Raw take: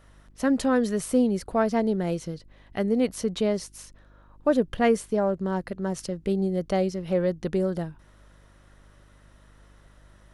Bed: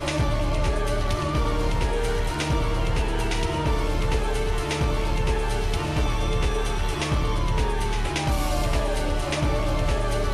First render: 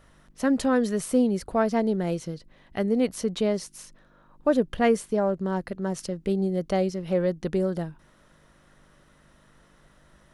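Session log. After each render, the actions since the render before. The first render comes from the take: de-hum 50 Hz, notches 2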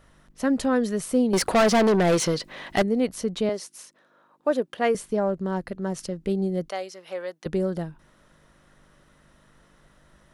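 1.33–2.82 s: overdrive pedal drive 27 dB, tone 7.7 kHz, clips at -11.5 dBFS; 3.49–4.95 s: high-pass 330 Hz; 6.69–7.46 s: high-pass 760 Hz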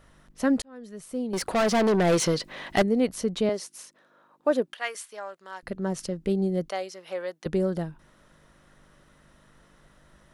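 0.62–2.31 s: fade in; 4.73–5.63 s: high-pass 1.3 kHz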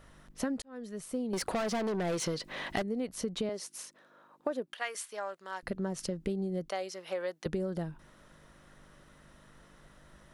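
compression 12:1, threshold -30 dBFS, peak gain reduction 13.5 dB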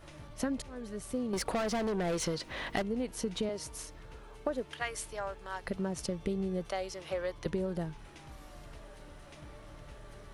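add bed -27 dB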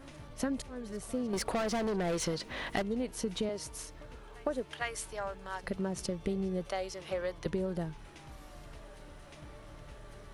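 reverse echo 454 ms -22.5 dB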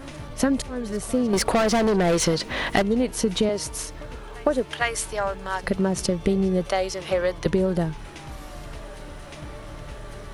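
trim +12 dB

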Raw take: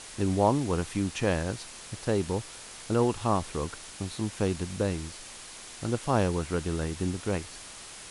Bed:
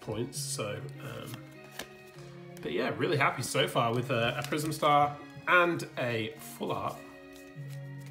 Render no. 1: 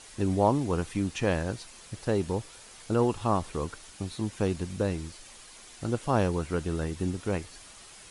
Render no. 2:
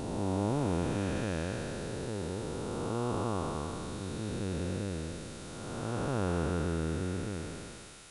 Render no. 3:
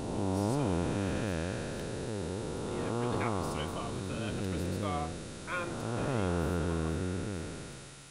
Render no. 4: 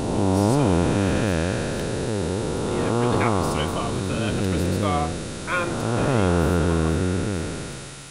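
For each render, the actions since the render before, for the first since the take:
noise reduction 7 dB, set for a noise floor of -45 dBFS
spectral blur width 719 ms; small resonant body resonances 1.4/3.7 kHz, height 8 dB, ringing for 25 ms
add bed -13 dB
trim +11.5 dB

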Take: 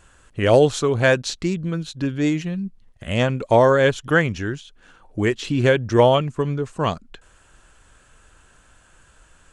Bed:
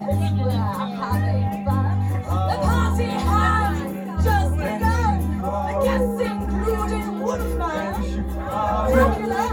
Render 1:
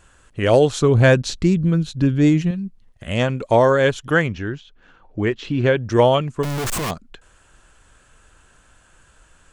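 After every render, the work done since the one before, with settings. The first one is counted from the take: 0.81–2.51 s: bass shelf 280 Hz +11 dB; 4.28–5.77 s: distance through air 150 m; 6.43–6.91 s: one-bit comparator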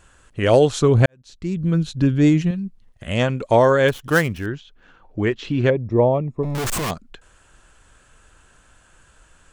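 1.06–1.77 s: fade in quadratic; 3.88–4.46 s: dead-time distortion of 0.063 ms; 5.70–6.55 s: boxcar filter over 29 samples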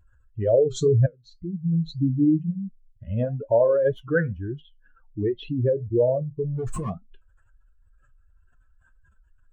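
spectral contrast enhancement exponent 2.6; flange 2 Hz, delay 7.8 ms, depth 3.8 ms, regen -61%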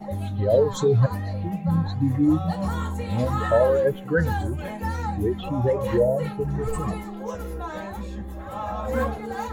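add bed -8.5 dB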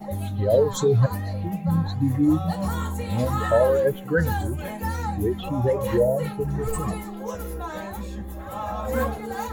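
treble shelf 8.7 kHz +12 dB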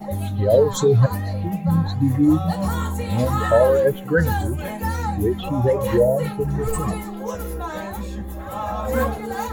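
trim +3.5 dB

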